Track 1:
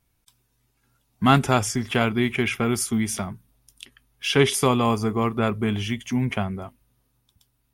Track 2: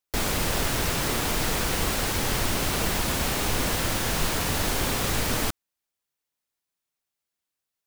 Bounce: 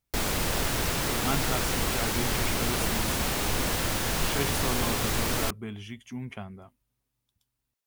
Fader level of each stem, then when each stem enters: -13.5, -2.0 dB; 0.00, 0.00 s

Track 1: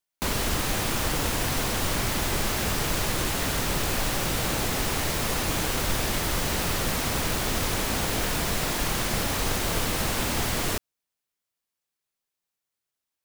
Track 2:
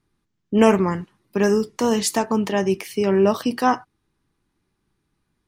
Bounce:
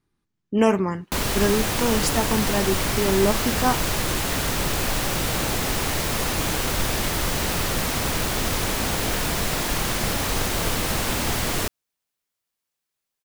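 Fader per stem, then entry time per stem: +2.5, -3.5 dB; 0.90, 0.00 s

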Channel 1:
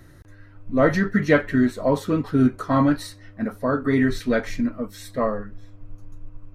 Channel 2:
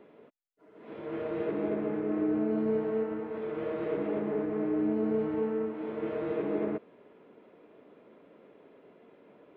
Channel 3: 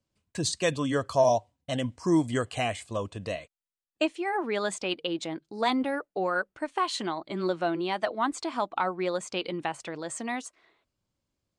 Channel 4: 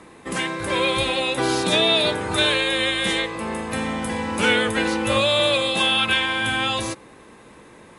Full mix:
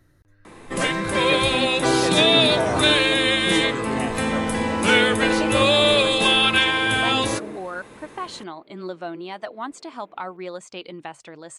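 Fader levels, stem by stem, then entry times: -11.0, -2.5, -4.0, +2.0 dB; 0.00, 0.80, 1.40, 0.45 s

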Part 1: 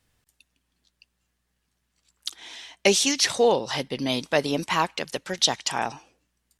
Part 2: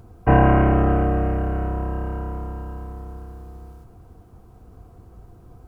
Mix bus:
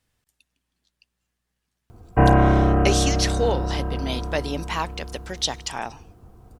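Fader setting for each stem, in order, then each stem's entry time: -3.5, -0.5 dB; 0.00, 1.90 s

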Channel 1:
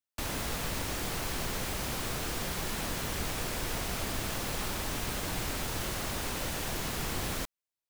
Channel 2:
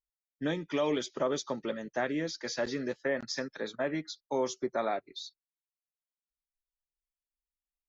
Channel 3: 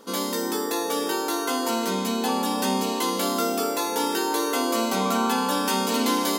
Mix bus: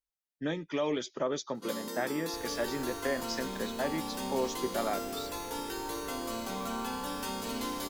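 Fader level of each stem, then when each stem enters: -14.0, -1.5, -13.0 dB; 2.15, 0.00, 1.55 s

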